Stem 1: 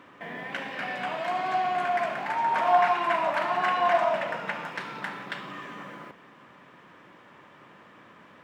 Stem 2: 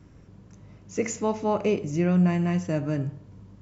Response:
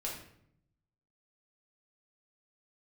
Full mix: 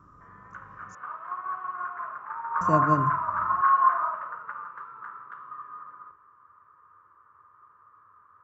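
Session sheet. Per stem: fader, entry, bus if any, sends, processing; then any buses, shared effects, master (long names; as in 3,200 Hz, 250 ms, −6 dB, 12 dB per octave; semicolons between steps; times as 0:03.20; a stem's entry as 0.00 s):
+2.0 dB, 0.00 s, send −7 dB, drawn EQ curve 100 Hz 0 dB, 160 Hz −20 dB, 230 Hz −24 dB, 440 Hz −14 dB, 740 Hz −24 dB, 1,200 Hz +9 dB, 2,300 Hz −13 dB, 4,600 Hz −25 dB, 7,200 Hz −16 dB
+2.0 dB, 0.00 s, muted 0:00.95–0:02.61, no send, high-shelf EQ 5,100 Hz +12 dB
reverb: on, RT60 0.70 s, pre-delay 5 ms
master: high shelf with overshoot 1,500 Hz −10 dB, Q 1.5; expander for the loud parts 1.5 to 1, over −35 dBFS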